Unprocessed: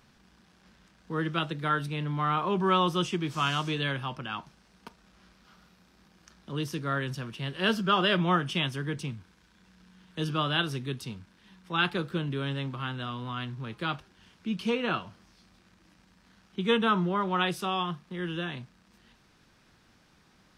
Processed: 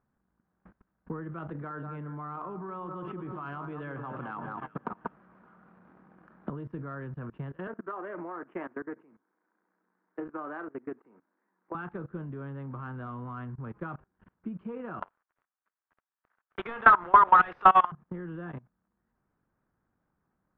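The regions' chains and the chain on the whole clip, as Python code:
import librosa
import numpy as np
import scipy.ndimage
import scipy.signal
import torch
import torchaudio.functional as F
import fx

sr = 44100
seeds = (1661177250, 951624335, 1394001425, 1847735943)

y = fx.chain(x, sr, fx.highpass(hz=160.0, slope=12),
    fx.echo_alternate(ms=189, hz=1500.0, feedback_pct=51, wet_db=-10.0),
    fx.env_flatten(amount_pct=50), at=(1.49, 6.5))
y = fx.chain(y, sr, fx.cheby1_bandpass(low_hz=290.0, high_hz=2200.0, order=3),
    fx.doppler_dist(depth_ms=0.15), at=(7.67, 11.75))
y = fx.chain(y, sr, fx.highpass(hz=910.0, slope=12),
    fx.tilt_eq(slope=2.0),
    fx.leveller(passes=5), at=(15.02, 17.92))
y = scipy.signal.sosfilt(scipy.signal.butter(4, 1500.0, 'lowpass', fs=sr, output='sos'), y)
y = fx.level_steps(y, sr, step_db=20)
y = fx.transient(y, sr, attack_db=7, sustain_db=-1)
y = y * 10.0 ** (1.0 / 20.0)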